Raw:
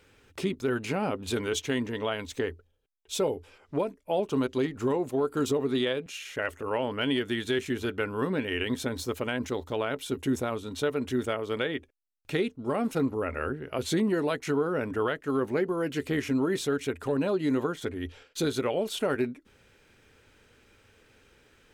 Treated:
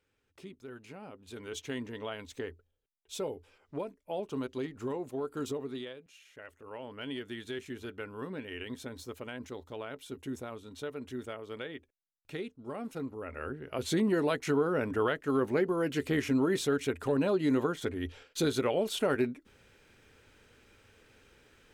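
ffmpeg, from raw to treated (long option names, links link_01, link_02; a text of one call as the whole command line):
ffmpeg -i in.wav -af "volume=8.5dB,afade=type=in:start_time=1.28:duration=0.4:silence=0.334965,afade=type=out:start_time=5.5:duration=0.48:silence=0.334965,afade=type=in:start_time=6.5:duration=0.68:silence=0.446684,afade=type=in:start_time=13.2:duration=0.98:silence=0.316228" out.wav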